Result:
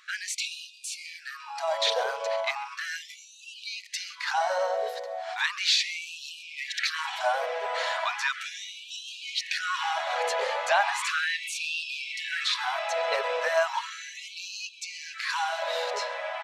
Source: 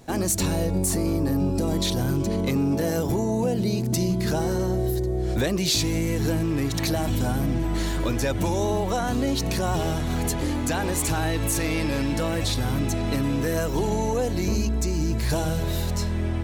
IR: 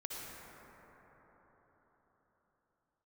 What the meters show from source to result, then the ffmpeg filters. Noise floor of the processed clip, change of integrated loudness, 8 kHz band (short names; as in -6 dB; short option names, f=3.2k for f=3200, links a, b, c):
-49 dBFS, -4.5 dB, -7.5 dB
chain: -af "lowpass=3.3k,aecho=1:1:134:0.0794,afftfilt=real='re*gte(b*sr/1024,430*pow(2500/430,0.5+0.5*sin(2*PI*0.36*pts/sr)))':imag='im*gte(b*sr/1024,430*pow(2500/430,0.5+0.5*sin(2*PI*0.36*pts/sr)))':win_size=1024:overlap=0.75,volume=7dB"